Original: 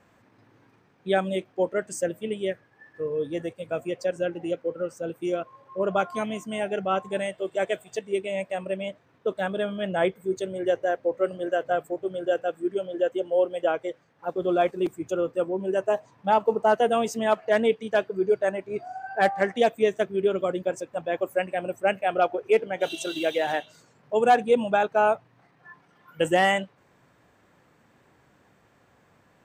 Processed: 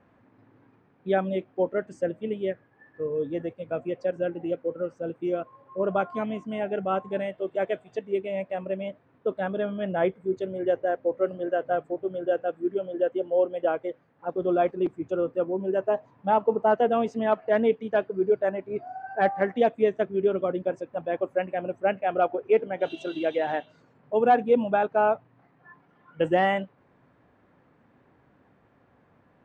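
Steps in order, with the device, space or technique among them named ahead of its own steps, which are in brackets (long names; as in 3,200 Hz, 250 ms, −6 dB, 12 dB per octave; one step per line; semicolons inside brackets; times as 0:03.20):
phone in a pocket (low-pass filter 3,700 Hz 12 dB per octave; parametric band 260 Hz +4.5 dB 0.25 octaves; high-shelf EQ 2,200 Hz −10 dB)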